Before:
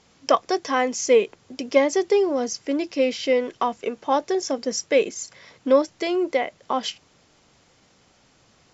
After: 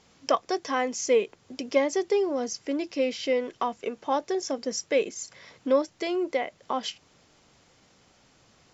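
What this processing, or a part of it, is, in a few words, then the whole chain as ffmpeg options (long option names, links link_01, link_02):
parallel compression: -filter_complex "[0:a]asplit=2[link_01][link_02];[link_02]acompressor=threshold=-34dB:ratio=6,volume=-4dB[link_03];[link_01][link_03]amix=inputs=2:normalize=0,volume=-6dB"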